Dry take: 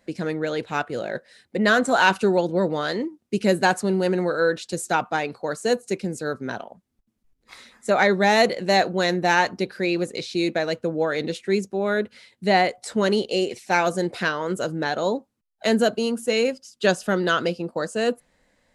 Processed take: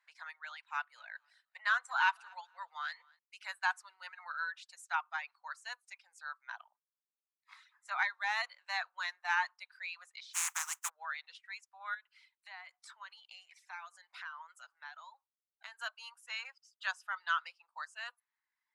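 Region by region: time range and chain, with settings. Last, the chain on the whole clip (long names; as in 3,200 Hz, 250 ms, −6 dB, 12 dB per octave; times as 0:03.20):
0:00.55–0:03.19: high-pass filter 460 Hz + repeating echo 238 ms, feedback 22%, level −16.5 dB
0:10.33–0:10.88: compressing power law on the bin magnitudes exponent 0.22 + high shelf with overshoot 5,400 Hz +9 dB, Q 3
0:11.94–0:15.79: high-pass filter 350 Hz + downward compressor 4 to 1, threshold −30 dBFS
whole clip: low-pass filter 1,300 Hz 6 dB per octave; reverb reduction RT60 1.2 s; Butterworth high-pass 940 Hz 48 dB per octave; level −5.5 dB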